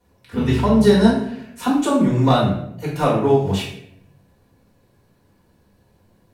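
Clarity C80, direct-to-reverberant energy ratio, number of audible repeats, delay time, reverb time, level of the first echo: 6.5 dB, −7.5 dB, no echo audible, no echo audible, 0.75 s, no echo audible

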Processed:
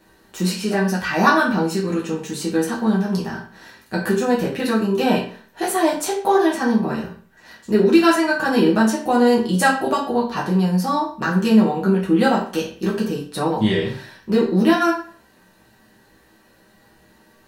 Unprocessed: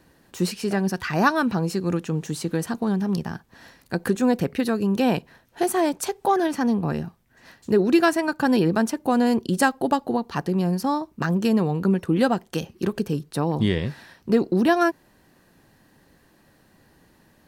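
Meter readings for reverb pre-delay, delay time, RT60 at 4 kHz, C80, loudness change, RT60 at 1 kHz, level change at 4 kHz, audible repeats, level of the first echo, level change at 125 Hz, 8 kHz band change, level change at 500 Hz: 5 ms, no echo audible, 0.40 s, 10.5 dB, +4.0 dB, 0.45 s, +5.5 dB, no echo audible, no echo audible, +1.5 dB, +4.0 dB, +4.5 dB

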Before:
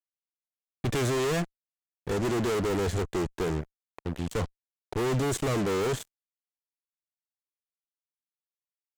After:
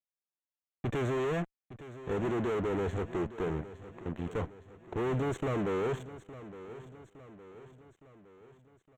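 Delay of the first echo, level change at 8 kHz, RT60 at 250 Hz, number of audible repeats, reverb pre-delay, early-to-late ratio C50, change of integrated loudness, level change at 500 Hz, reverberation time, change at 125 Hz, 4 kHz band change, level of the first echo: 863 ms, −18.0 dB, no reverb audible, 4, no reverb audible, no reverb audible, −4.5 dB, −3.5 dB, no reverb audible, −5.0 dB, −12.0 dB, −15.0 dB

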